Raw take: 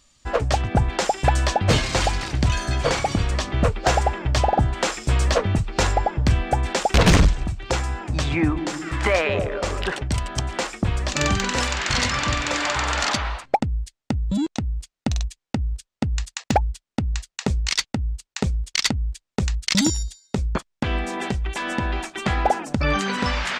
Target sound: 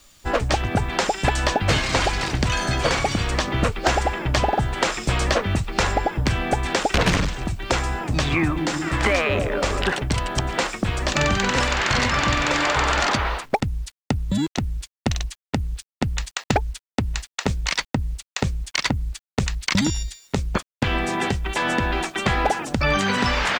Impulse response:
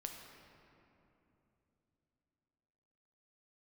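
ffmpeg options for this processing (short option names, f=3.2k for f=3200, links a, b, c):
-filter_complex "[0:a]acrossover=split=120|1200|2700|6300[a][b][c][d][e];[a]acompressor=threshold=-32dB:ratio=4[f];[b]acompressor=threshold=-27dB:ratio=4[g];[c]acompressor=threshold=-29dB:ratio=4[h];[d]acompressor=threshold=-35dB:ratio=4[i];[e]acompressor=threshold=-44dB:ratio=4[j];[f][g][h][i][j]amix=inputs=5:normalize=0,asplit=2[k][l];[l]asetrate=22050,aresample=44100,atempo=2,volume=-9dB[m];[k][m]amix=inputs=2:normalize=0,acrusher=bits=9:mix=0:aa=0.000001,volume=5dB"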